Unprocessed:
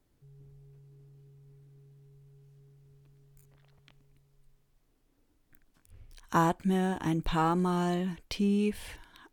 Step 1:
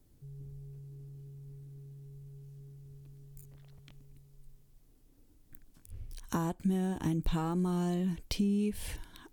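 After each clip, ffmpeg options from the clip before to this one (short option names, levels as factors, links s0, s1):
-af "acompressor=threshold=0.0178:ratio=4,equalizer=f=1400:w=0.31:g=-11,volume=2.82"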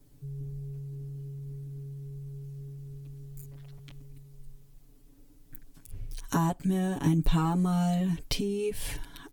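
-af "aecho=1:1:7.1:0.97,volume=1.41"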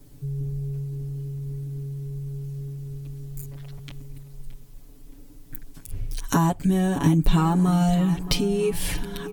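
-filter_complex "[0:a]asplit=2[s0][s1];[s1]acompressor=threshold=0.0178:ratio=6,volume=0.794[s2];[s0][s2]amix=inputs=2:normalize=0,asplit=2[s3][s4];[s4]adelay=621,lowpass=f=2500:p=1,volume=0.2,asplit=2[s5][s6];[s6]adelay=621,lowpass=f=2500:p=1,volume=0.47,asplit=2[s7][s8];[s8]adelay=621,lowpass=f=2500:p=1,volume=0.47,asplit=2[s9][s10];[s10]adelay=621,lowpass=f=2500:p=1,volume=0.47[s11];[s3][s5][s7][s9][s11]amix=inputs=5:normalize=0,volume=1.68"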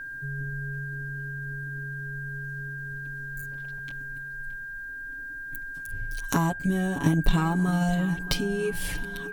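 -af "aeval=exprs='0.501*(cos(1*acos(clip(val(0)/0.501,-1,1)))-cos(1*PI/2))+0.0794*(cos(3*acos(clip(val(0)/0.501,-1,1)))-cos(3*PI/2))':c=same,aeval=exprs='val(0)+0.0178*sin(2*PI*1600*n/s)':c=same"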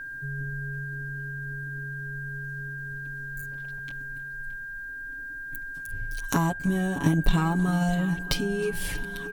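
-af "aecho=1:1:313:0.0668"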